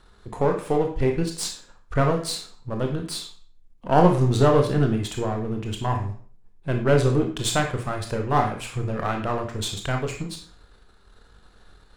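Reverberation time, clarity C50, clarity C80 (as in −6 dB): 0.50 s, 6.5 dB, 11.5 dB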